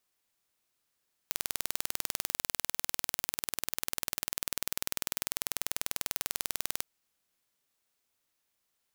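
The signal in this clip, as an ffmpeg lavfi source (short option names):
-f lavfi -i "aevalsrc='0.668*eq(mod(n,2183),0)':d=5.5:s=44100"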